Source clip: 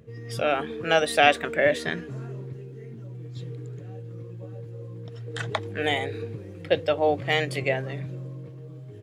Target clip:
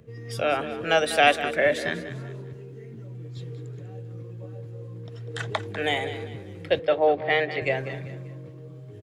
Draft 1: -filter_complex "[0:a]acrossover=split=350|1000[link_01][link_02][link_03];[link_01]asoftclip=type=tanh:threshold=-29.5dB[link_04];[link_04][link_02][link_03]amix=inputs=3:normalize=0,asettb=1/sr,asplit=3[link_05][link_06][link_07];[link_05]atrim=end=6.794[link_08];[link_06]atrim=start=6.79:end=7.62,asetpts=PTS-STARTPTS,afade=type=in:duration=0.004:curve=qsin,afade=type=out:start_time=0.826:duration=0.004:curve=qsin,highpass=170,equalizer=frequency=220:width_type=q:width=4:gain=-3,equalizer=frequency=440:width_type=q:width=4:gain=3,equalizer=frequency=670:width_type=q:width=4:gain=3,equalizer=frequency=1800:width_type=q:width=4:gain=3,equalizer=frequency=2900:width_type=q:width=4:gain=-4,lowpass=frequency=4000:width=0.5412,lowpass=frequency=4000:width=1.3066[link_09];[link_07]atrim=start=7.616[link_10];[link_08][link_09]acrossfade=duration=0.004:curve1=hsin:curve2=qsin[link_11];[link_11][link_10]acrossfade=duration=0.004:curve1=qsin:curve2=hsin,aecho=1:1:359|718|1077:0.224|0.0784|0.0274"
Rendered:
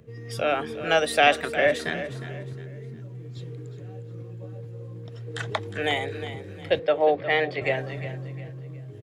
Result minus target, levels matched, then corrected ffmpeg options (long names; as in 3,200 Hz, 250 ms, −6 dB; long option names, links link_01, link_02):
echo 163 ms late
-filter_complex "[0:a]acrossover=split=350|1000[link_01][link_02][link_03];[link_01]asoftclip=type=tanh:threshold=-29.5dB[link_04];[link_04][link_02][link_03]amix=inputs=3:normalize=0,asettb=1/sr,asplit=3[link_05][link_06][link_07];[link_05]atrim=end=6.794[link_08];[link_06]atrim=start=6.79:end=7.62,asetpts=PTS-STARTPTS,afade=type=in:duration=0.004:curve=qsin,afade=type=out:start_time=0.826:duration=0.004:curve=qsin,highpass=170,equalizer=frequency=220:width_type=q:width=4:gain=-3,equalizer=frequency=440:width_type=q:width=4:gain=3,equalizer=frequency=670:width_type=q:width=4:gain=3,equalizer=frequency=1800:width_type=q:width=4:gain=3,equalizer=frequency=2900:width_type=q:width=4:gain=-4,lowpass=frequency=4000:width=0.5412,lowpass=frequency=4000:width=1.3066[link_09];[link_07]atrim=start=7.616[link_10];[link_08][link_09]acrossfade=duration=0.004:curve1=hsin:curve2=qsin[link_11];[link_11][link_10]acrossfade=duration=0.004:curve1=qsin:curve2=hsin,aecho=1:1:196|392|588:0.224|0.0784|0.0274"